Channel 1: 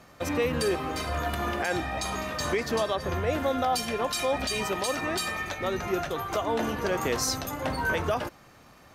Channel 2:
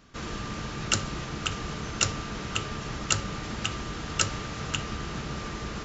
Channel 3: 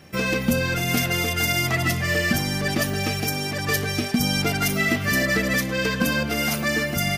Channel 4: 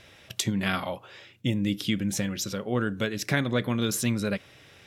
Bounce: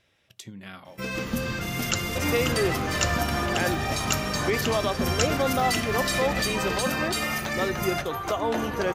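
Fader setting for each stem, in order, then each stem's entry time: +1.5 dB, -2.0 dB, -8.0 dB, -14.5 dB; 1.95 s, 1.00 s, 0.85 s, 0.00 s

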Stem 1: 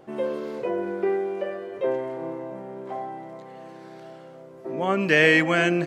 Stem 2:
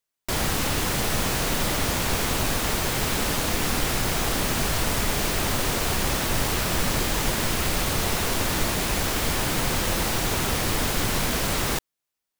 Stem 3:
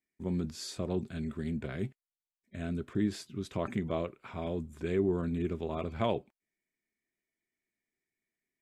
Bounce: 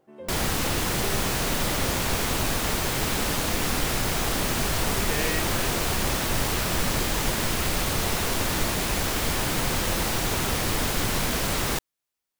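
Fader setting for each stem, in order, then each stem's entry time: -14.5 dB, -1.0 dB, -12.0 dB; 0.00 s, 0.00 s, 0.00 s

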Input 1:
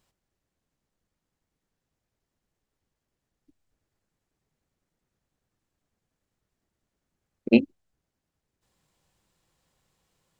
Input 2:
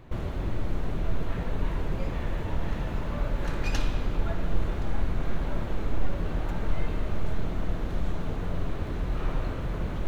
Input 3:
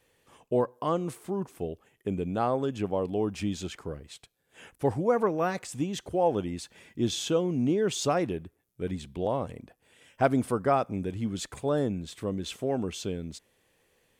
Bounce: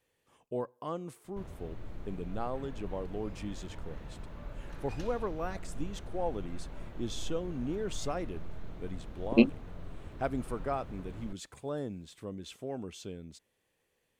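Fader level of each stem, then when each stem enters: -4.0 dB, -14.5 dB, -9.5 dB; 1.85 s, 1.25 s, 0.00 s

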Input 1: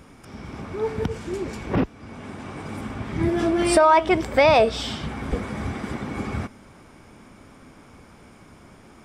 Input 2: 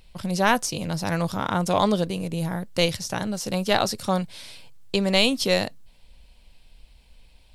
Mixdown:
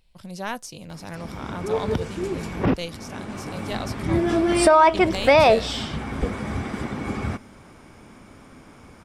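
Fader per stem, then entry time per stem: +1.0 dB, -10.5 dB; 0.90 s, 0.00 s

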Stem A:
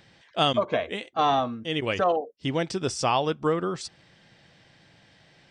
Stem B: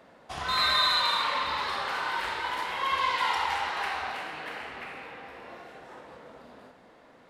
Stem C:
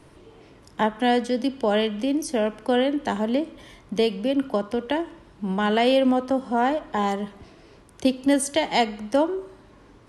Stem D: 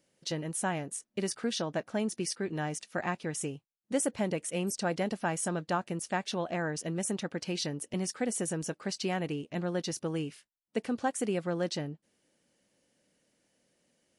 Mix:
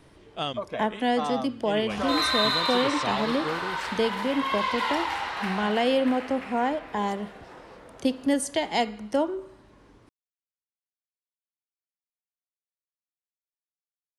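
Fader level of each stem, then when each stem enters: -8.0 dB, -0.5 dB, -4.0 dB, mute; 0.00 s, 1.60 s, 0.00 s, mute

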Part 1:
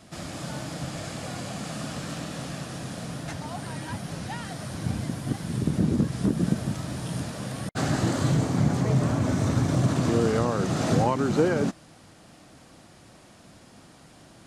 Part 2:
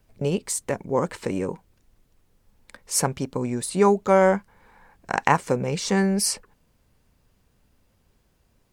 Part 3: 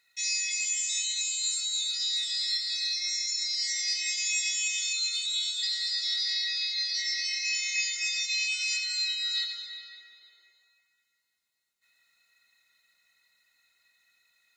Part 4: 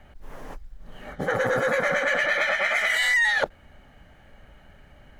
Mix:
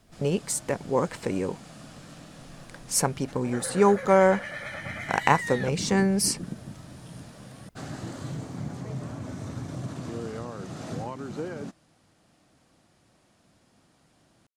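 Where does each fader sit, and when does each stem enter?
-12.0 dB, -1.5 dB, mute, -14.0 dB; 0.00 s, 0.00 s, mute, 2.25 s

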